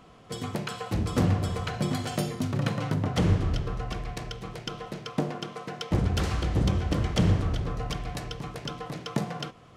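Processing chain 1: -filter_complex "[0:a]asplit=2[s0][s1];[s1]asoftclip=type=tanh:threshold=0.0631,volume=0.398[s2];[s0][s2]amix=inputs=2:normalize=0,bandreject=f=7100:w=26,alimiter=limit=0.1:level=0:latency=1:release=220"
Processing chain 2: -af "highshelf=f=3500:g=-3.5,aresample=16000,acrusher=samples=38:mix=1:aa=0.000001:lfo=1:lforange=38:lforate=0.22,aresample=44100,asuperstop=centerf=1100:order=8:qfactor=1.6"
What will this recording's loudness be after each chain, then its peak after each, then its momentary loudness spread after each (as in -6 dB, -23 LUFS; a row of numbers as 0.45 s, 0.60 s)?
-32.0 LUFS, -30.0 LUFS; -20.0 dBFS, -10.5 dBFS; 6 LU, 14 LU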